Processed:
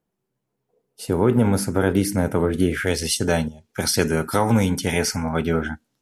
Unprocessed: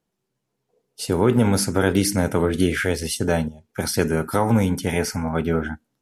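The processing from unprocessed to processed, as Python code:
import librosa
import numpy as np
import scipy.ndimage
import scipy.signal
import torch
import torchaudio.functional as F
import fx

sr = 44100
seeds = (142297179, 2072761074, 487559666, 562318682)

y = fx.peak_eq(x, sr, hz=5000.0, db=fx.steps((0.0, -7.0), (2.87, 5.5)), octaves=2.4)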